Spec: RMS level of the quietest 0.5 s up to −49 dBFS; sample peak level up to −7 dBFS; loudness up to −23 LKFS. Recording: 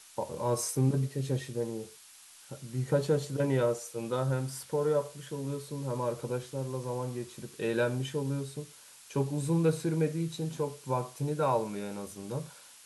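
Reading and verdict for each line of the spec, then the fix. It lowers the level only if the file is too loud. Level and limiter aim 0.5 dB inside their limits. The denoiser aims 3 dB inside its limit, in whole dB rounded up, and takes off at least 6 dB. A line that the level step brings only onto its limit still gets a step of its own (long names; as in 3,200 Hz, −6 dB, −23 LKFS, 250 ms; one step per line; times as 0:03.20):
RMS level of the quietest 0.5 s −54 dBFS: in spec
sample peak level −15.5 dBFS: in spec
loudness −32.5 LKFS: in spec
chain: no processing needed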